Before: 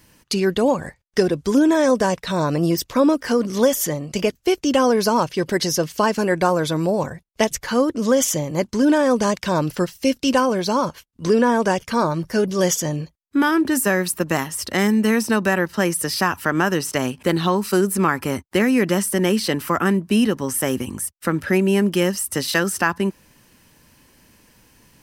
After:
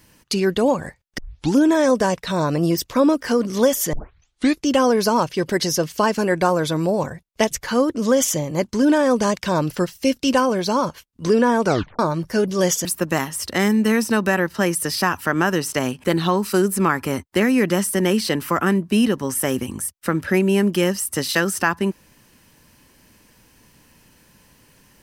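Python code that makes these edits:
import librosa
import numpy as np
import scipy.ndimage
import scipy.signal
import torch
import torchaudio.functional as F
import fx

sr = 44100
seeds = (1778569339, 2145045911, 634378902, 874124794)

y = fx.edit(x, sr, fx.tape_start(start_s=1.18, length_s=0.38),
    fx.tape_start(start_s=3.93, length_s=0.73),
    fx.tape_stop(start_s=11.65, length_s=0.34),
    fx.cut(start_s=12.85, length_s=1.19), tone=tone)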